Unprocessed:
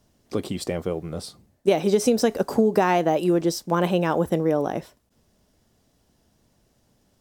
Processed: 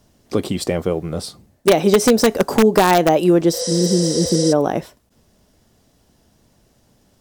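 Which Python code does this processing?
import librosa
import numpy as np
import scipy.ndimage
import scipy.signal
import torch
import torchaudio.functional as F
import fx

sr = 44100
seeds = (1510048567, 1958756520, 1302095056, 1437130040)

p1 = fx.spec_repair(x, sr, seeds[0], start_s=3.56, length_s=0.94, low_hz=480.0, high_hz=11000.0, source='before')
p2 = (np.mod(10.0 ** (10.5 / 20.0) * p1 + 1.0, 2.0) - 1.0) / 10.0 ** (10.5 / 20.0)
p3 = p1 + (p2 * 10.0 ** (-3.5 / 20.0))
y = p3 * 10.0 ** (2.5 / 20.0)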